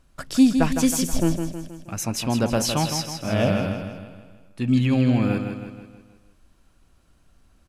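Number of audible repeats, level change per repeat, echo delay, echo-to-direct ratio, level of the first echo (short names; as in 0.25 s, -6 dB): 5, -6.0 dB, 0.159 s, -6.0 dB, -7.0 dB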